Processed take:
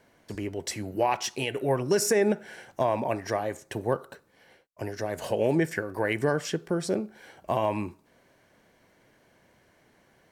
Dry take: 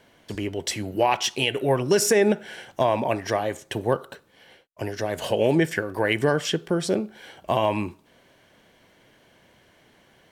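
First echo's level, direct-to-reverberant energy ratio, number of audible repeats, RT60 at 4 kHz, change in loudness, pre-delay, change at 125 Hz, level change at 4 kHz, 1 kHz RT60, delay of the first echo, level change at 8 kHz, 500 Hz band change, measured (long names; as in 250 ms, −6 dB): no echo audible, no reverb audible, no echo audible, no reverb audible, −4.5 dB, no reverb audible, −4.0 dB, −8.5 dB, no reverb audible, no echo audible, −4.5 dB, −4.0 dB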